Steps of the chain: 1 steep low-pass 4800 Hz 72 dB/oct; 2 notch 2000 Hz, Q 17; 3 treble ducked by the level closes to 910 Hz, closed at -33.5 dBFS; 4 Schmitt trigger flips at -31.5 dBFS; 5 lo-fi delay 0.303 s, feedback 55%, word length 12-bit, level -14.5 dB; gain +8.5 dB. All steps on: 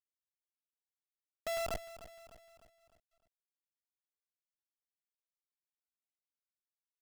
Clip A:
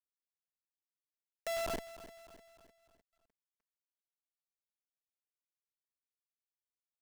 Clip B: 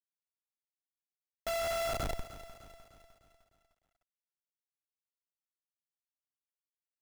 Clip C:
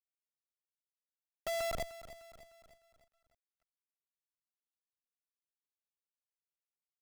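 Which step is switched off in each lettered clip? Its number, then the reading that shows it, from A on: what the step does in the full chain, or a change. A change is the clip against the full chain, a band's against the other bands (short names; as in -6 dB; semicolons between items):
1, 250 Hz band +6.5 dB; 3, 125 Hz band +4.0 dB; 2, momentary loudness spread change -1 LU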